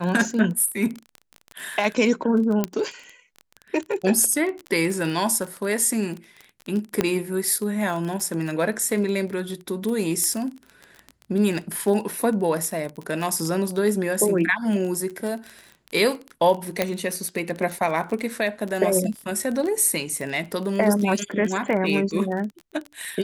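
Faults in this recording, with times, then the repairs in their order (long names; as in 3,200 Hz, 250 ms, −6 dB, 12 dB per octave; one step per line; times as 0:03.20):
surface crackle 24 per second −27 dBFS
0:02.64: click −8 dBFS
0:07.01: click −6 dBFS
0:10.24: click −11 dBFS
0:16.82: click −6 dBFS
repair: click removal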